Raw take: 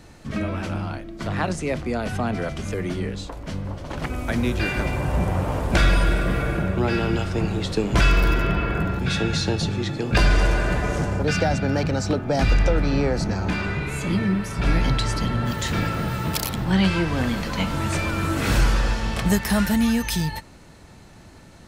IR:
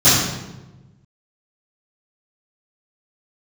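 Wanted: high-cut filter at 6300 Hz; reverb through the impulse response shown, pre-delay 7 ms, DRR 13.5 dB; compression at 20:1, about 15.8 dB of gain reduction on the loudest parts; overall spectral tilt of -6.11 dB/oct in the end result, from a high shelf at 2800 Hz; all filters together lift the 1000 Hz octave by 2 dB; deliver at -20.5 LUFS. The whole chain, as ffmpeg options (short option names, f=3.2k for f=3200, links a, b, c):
-filter_complex "[0:a]lowpass=6.3k,equalizer=f=1k:t=o:g=4,highshelf=f=2.8k:g=-7.5,acompressor=threshold=-29dB:ratio=20,asplit=2[a][b];[1:a]atrim=start_sample=2205,adelay=7[c];[b][c]afir=irnorm=-1:irlink=0,volume=-38dB[d];[a][d]amix=inputs=2:normalize=0,volume=13dB"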